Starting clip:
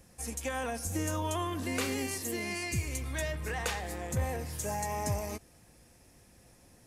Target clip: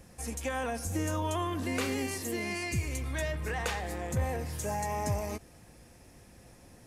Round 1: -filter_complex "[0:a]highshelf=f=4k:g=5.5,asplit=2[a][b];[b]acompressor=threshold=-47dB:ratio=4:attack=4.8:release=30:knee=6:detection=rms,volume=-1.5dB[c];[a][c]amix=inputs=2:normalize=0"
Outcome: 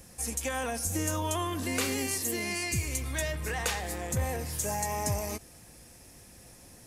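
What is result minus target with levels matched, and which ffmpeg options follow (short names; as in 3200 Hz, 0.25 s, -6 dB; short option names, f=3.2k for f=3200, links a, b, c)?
8000 Hz band +5.5 dB
-filter_complex "[0:a]highshelf=f=4k:g=-5,asplit=2[a][b];[b]acompressor=threshold=-47dB:ratio=4:attack=4.8:release=30:knee=6:detection=rms,volume=-1.5dB[c];[a][c]amix=inputs=2:normalize=0"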